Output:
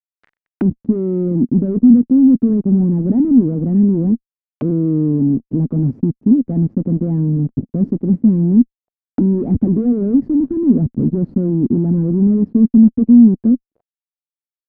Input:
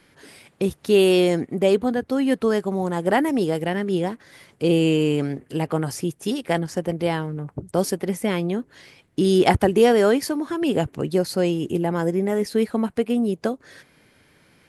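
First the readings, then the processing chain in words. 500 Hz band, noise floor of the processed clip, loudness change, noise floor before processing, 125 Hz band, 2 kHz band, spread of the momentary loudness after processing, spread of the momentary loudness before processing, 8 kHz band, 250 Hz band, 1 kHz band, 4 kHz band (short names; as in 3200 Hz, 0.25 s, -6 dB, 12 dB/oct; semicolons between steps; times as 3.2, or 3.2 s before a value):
-4.5 dB, under -85 dBFS, +7.5 dB, -59 dBFS, +10.5 dB, under -20 dB, 8 LU, 10 LU, under -40 dB, +11.0 dB, under -15 dB, under -35 dB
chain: fuzz box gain 31 dB, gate -36 dBFS; envelope low-pass 240–1900 Hz down, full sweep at -23 dBFS; gain -2 dB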